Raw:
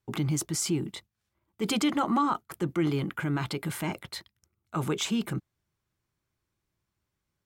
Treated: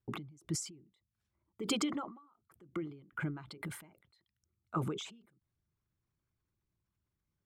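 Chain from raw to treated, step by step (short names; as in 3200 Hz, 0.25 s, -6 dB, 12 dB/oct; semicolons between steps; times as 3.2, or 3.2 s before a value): formant sharpening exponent 1.5; ending taper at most 100 dB/s; gain -3 dB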